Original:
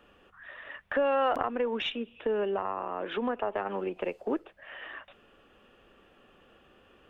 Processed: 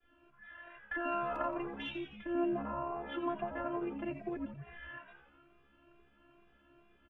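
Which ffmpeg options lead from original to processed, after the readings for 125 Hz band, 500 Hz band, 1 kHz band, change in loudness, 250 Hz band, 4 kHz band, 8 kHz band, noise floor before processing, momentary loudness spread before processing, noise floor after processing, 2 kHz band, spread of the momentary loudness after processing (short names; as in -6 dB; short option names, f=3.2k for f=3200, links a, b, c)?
+0.5 dB, -9.5 dB, -6.5 dB, -7.0 dB, -1.5 dB, -11.0 dB, n/a, -61 dBFS, 17 LU, -68 dBFS, -5.5 dB, 16 LU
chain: -filter_complex "[0:a]agate=range=-33dB:threshold=-58dB:ratio=3:detection=peak,bass=f=250:g=5,treble=f=4k:g=-12,afftfilt=real='hypot(re,im)*cos(PI*b)':imag='0':win_size=512:overlap=0.75,asplit=2[a][b];[b]asplit=8[c][d][e][f][g][h][i][j];[c]adelay=86,afreqshift=-68,volume=-9dB[k];[d]adelay=172,afreqshift=-136,volume=-12.9dB[l];[e]adelay=258,afreqshift=-204,volume=-16.8dB[m];[f]adelay=344,afreqshift=-272,volume=-20.6dB[n];[g]adelay=430,afreqshift=-340,volume=-24.5dB[o];[h]adelay=516,afreqshift=-408,volume=-28.4dB[p];[i]adelay=602,afreqshift=-476,volume=-32.3dB[q];[j]adelay=688,afreqshift=-544,volume=-36.1dB[r];[k][l][m][n][o][p][q][r]amix=inputs=8:normalize=0[s];[a][s]amix=inputs=2:normalize=0,asplit=2[t][u];[u]adelay=2,afreqshift=2.3[v];[t][v]amix=inputs=2:normalize=1"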